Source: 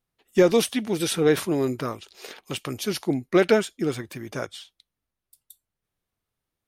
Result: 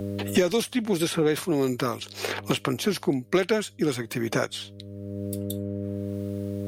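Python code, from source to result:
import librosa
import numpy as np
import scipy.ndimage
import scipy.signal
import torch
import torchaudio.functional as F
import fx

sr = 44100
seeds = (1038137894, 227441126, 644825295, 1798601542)

y = fx.dmg_buzz(x, sr, base_hz=100.0, harmonics=6, level_db=-57.0, tilt_db=-6, odd_only=False)
y = fx.band_squash(y, sr, depth_pct=100)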